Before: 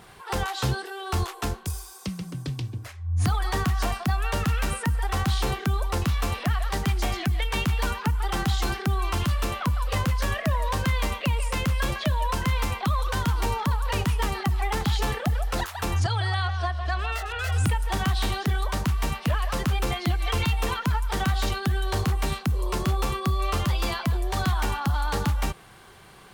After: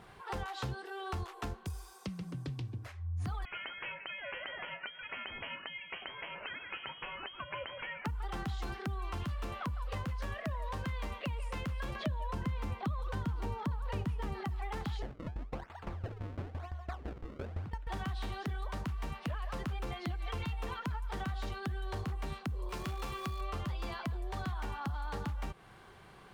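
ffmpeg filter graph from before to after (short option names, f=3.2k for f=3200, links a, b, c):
-filter_complex "[0:a]asettb=1/sr,asplit=3[a][b][c];[a]atrim=end=3.454[d];[b]atrim=start=3.45:end=8.05,asetpts=PTS-STARTPTS,afade=t=in:d=0.004:c=qsin,afade=t=out:st=4.596:d=0.004:c=qsin,aemphasis=mode=production:type=riaa,flanger=delay=4.9:depth=1.1:regen=66:speed=1.5:shape=triangular,lowpass=f=2.8k:t=q:w=0.5098,lowpass=f=2.8k:t=q:w=0.6013,lowpass=f=2.8k:t=q:w=0.9,lowpass=f=2.8k:t=q:w=2.563,afreqshift=-3300[e];[c]atrim=start=8.046[f];[d][e]acrossfade=d=0.004:c1=hsin:c2=qsin[g];[g][f]acrossfade=d=0.004:c1=qsin:c2=hsin,asettb=1/sr,asplit=3[h][i][j];[h]atrim=end=11.954[k];[i]atrim=start=11.95:end=14.45,asetpts=PTS-STARTPTS,afade=t=in:d=0.004:c=qsin,afade=t=out:st=2.496:d=0.004:c=qsin,highpass=f=92:p=1,lowshelf=f=410:g=11,acompressor=mode=upward:threshold=-25dB:ratio=2.5:attack=3.2:release=140:knee=2.83:detection=peak[l];[j]atrim=start=14.446[m];[k][l]acrossfade=d=0.004:c1=hsin:c2=qsin[n];[n][m]acrossfade=d=0.004:c1=qsin:c2=hsin,asettb=1/sr,asplit=3[o][p][q];[o]atrim=end=15.024[r];[p]atrim=start=15.02:end=17.87,asetpts=PTS-STARTPTS,afade=t=in:d=0.004:c=qsin,afade=t=out:st=2.846:d=0.004:c=qsin,acrusher=samples=31:mix=1:aa=0.000001:lfo=1:lforange=49.6:lforate=1,lowpass=f=2.8k:p=1,aeval=exprs='val(0)*pow(10,-18*if(lt(mod(5.9*n/s,1),2*abs(5.9)/1000),1-mod(5.9*n/s,1)/(2*abs(5.9)/1000),(mod(5.9*n/s,1)-2*abs(5.9)/1000)/(1-2*abs(5.9)/1000))/20)':c=same[s];[q]atrim=start=17.866[t];[r][s]acrossfade=d=0.004:c1=hsin:c2=qsin[u];[u][t]acrossfade=d=0.004:c1=qsin:c2=hsin,asettb=1/sr,asplit=3[v][w][x];[v]atrim=end=22.694[y];[w]atrim=start=22.69:end=23.41,asetpts=PTS-STARTPTS,afade=t=in:d=0.004:c=qsin,afade=t=out:st=0.716:d=0.004:c=qsin,tiltshelf=f=1.4k:g=-4,acrusher=bits=7:dc=4:mix=0:aa=0.000001,aeval=exprs='val(0)+0.00501*sin(2*PI*2400*n/s)':c=same[z];[x]atrim=start=23.406[aa];[y][z]acrossfade=d=0.004:c1=hsin:c2=qsin[ab];[ab][aa]acrossfade=d=0.004:c1=qsin:c2=hsin,highshelf=f=4.4k:g=-11.5,acompressor=threshold=-32dB:ratio=3,volume=-5dB"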